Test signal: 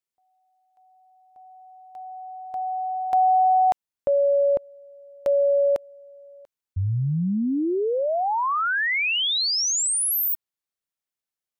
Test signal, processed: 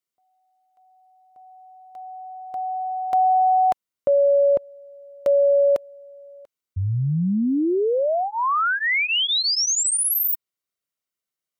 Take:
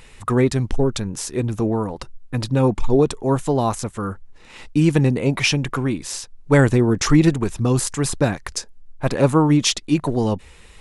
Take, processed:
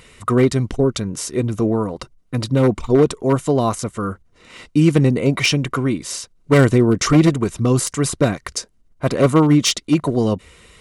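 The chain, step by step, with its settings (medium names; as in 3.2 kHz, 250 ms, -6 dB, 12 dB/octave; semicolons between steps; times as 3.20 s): one-sided wavefolder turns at -11 dBFS; comb of notches 850 Hz; trim +3 dB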